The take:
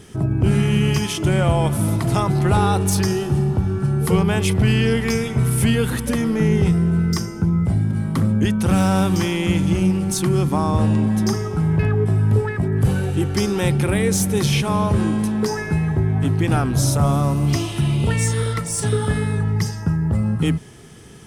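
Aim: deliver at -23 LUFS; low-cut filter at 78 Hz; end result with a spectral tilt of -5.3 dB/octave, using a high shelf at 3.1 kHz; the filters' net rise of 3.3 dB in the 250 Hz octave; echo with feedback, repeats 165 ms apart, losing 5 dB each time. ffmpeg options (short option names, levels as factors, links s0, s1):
-af "highpass=78,equalizer=f=250:t=o:g=5,highshelf=f=3100:g=7.5,aecho=1:1:165|330|495|660|825|990|1155:0.562|0.315|0.176|0.0988|0.0553|0.031|0.0173,volume=0.447"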